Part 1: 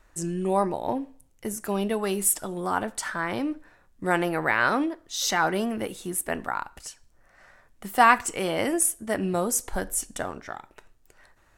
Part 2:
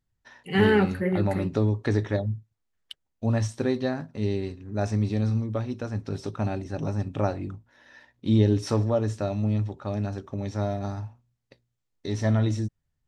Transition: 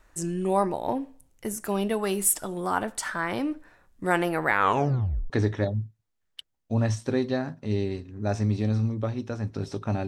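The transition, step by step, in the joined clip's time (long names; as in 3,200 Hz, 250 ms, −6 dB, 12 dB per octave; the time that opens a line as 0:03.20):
part 1
0:04.49: tape stop 0.81 s
0:05.30: continue with part 2 from 0:01.82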